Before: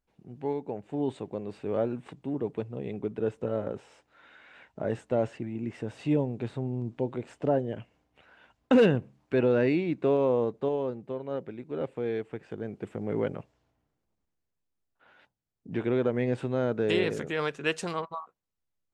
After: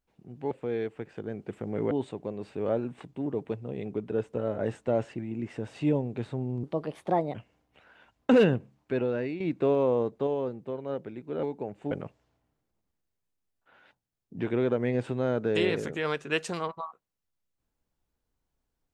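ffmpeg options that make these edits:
-filter_complex "[0:a]asplit=9[a][b][c][d][e][f][g][h][i];[a]atrim=end=0.512[j];[b]atrim=start=11.848:end=13.252[k];[c]atrim=start=0.988:end=3.662[l];[d]atrim=start=4.818:end=6.874[m];[e]atrim=start=6.87:end=7.76,asetpts=PTS-STARTPTS,asetrate=55125,aresample=44100,atrim=end_sample=31399,asetpts=PTS-STARTPTS[n];[f]atrim=start=7.756:end=9.82,asetpts=PTS-STARTPTS,afade=t=out:st=1.194:d=0.87:silence=0.298538[o];[g]atrim=start=9.82:end=11.852,asetpts=PTS-STARTPTS,afade=t=in:d=0.004:c=hsin:silence=0.298538[p];[h]atrim=start=0.508:end=0.992[q];[i]atrim=start=13.248[r];[j][k]acrossfade=d=0.004:c1=hsin:c2=hsin[s];[s][l]acrossfade=d=0.004:c1=hsin:c2=hsin[t];[t][m]acrossfade=d=0.004:c1=hsin:c2=hsin[u];[u][n]acrossfade=d=0.004:c1=hsin:c2=hsin[v];[o][p]concat=n=2:v=0:a=1[w];[v][w]acrossfade=d=0.004:c1=hsin:c2=hsin[x];[x][q]acrossfade=d=0.004:c1=hsin:c2=hsin[y];[y][r]acrossfade=d=0.004:c1=hsin:c2=hsin"

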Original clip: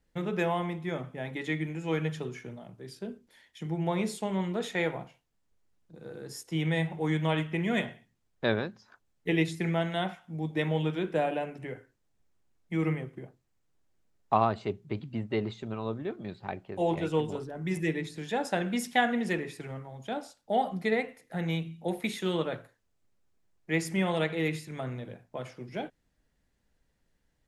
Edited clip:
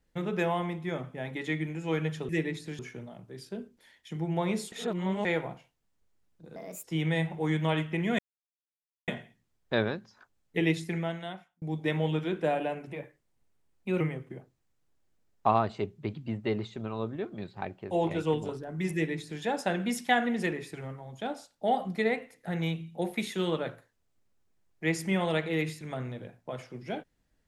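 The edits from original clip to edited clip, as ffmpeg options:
-filter_complex "[0:a]asplit=11[a][b][c][d][e][f][g][h][i][j][k];[a]atrim=end=2.292[l];[b]atrim=start=17.788:end=18.292[m];[c]atrim=start=2.288:end=4.222[n];[d]atrim=start=4.218:end=4.752,asetpts=PTS-STARTPTS,areverse[o];[e]atrim=start=4.748:end=6.064[p];[f]atrim=start=6.06:end=6.44,asetpts=PTS-STARTPTS,asetrate=60417,aresample=44100,atrim=end_sample=12232,asetpts=PTS-STARTPTS[q];[g]atrim=start=6.436:end=7.79,asetpts=PTS-STARTPTS,afade=t=out:st=1.35:d=0.004:c=hsin,apad=pad_dur=0.89[r];[h]atrim=start=7.79:end=10.33,asetpts=PTS-STARTPTS,afade=t=in:d=0.004:c=hsin,afade=t=out:st=1.65:d=0.89[s];[i]atrim=start=10.33:end=11.634,asetpts=PTS-STARTPTS,afade=t=in:d=0.004:c=hsin[t];[j]atrim=start=11.63:end=12.87,asetpts=PTS-STARTPTS,asetrate=50274,aresample=44100,atrim=end_sample=47968,asetpts=PTS-STARTPTS[u];[k]atrim=start=12.866[v];[l][m]acrossfade=d=0.004:c1=hsin:c2=hsin[w];[w][n]acrossfade=d=0.004:c1=hsin:c2=hsin[x];[x][o]acrossfade=d=0.004:c1=hsin:c2=hsin[y];[y][p]acrossfade=d=0.004:c1=hsin:c2=hsin[z];[z][q]acrossfade=d=0.004:c1=hsin:c2=hsin[aa];[r][s][t]concat=n=3:v=0:a=1[ab];[aa][ab]acrossfade=d=0.004:c1=hsin:c2=hsin[ac];[ac][u]acrossfade=d=0.004:c1=hsin:c2=hsin[ad];[ad][v]acrossfade=d=0.004:c1=hsin:c2=hsin"

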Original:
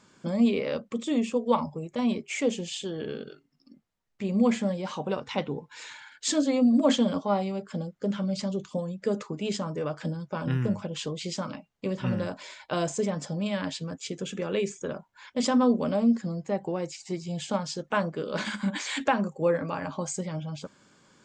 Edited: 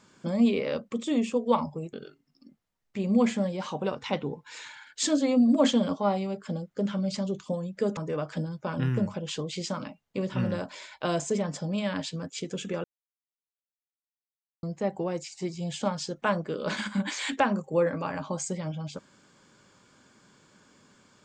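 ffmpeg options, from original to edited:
-filter_complex "[0:a]asplit=5[a][b][c][d][e];[a]atrim=end=1.932[f];[b]atrim=start=3.178:end=9.222[g];[c]atrim=start=9.648:end=14.52,asetpts=PTS-STARTPTS,afade=t=out:st=4.868:d=0.004:c=hsin[h];[d]atrim=start=14.52:end=16.31,asetpts=PTS-STARTPTS,volume=0[i];[e]atrim=start=16.31,asetpts=PTS-STARTPTS,afade=t=in:d=0.004:c=hsin[j];[f][g]acrossfade=d=0.004:c1=hsin:c2=hsin[k];[h][i][j]concat=n=3:v=0:a=1[l];[k][l]acrossfade=d=0.004:c1=hsin:c2=hsin"

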